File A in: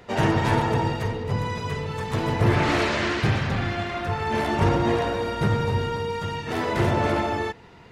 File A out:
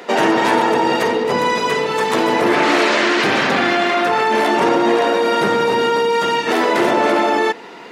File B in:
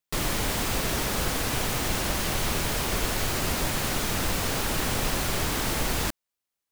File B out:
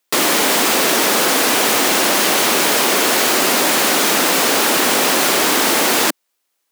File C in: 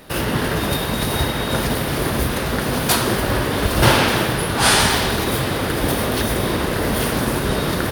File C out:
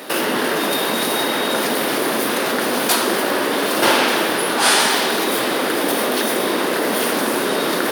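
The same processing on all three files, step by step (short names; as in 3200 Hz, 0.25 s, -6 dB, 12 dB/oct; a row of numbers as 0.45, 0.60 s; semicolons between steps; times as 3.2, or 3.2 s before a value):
HPF 250 Hz 24 dB/oct; in parallel at 0 dB: negative-ratio compressor -30 dBFS, ratio -1; on the sum: normalise peaks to -2 dBFS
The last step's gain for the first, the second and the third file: +6.5, +8.5, 0.0 dB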